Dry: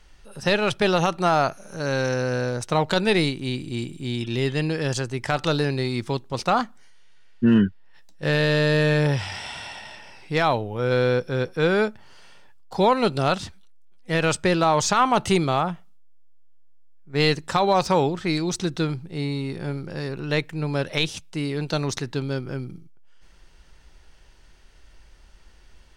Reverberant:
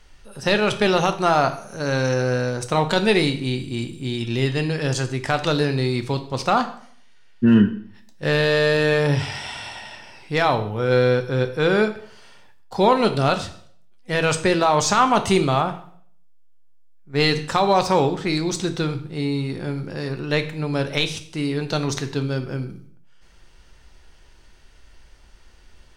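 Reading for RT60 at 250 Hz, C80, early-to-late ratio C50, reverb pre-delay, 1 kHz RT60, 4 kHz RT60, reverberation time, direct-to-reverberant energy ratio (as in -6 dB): 0.60 s, 16.0 dB, 12.5 dB, 4 ms, 0.55 s, 0.50 s, 0.60 s, 7.5 dB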